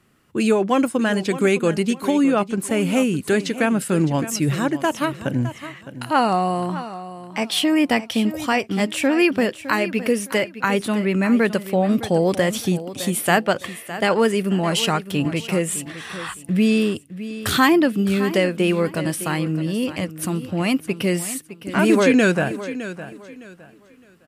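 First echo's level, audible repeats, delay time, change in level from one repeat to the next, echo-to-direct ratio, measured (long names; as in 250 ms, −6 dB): −13.5 dB, 2, 611 ms, −11.5 dB, −13.0 dB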